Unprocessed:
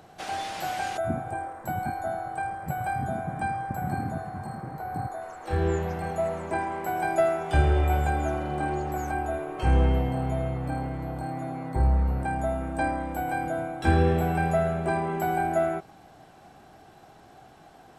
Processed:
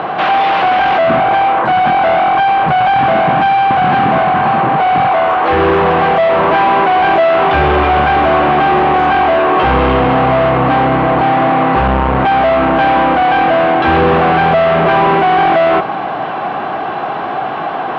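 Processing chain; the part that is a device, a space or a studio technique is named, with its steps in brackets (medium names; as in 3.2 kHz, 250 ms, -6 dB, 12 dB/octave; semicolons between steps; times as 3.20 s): bass shelf 77 Hz +10 dB; overdrive pedal into a guitar cabinet (overdrive pedal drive 37 dB, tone 1.4 kHz, clips at -10.5 dBFS; cabinet simulation 84–3500 Hz, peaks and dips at 96 Hz -10 dB, 1.1 kHz +7 dB, 2.8 kHz +3 dB); trim +7 dB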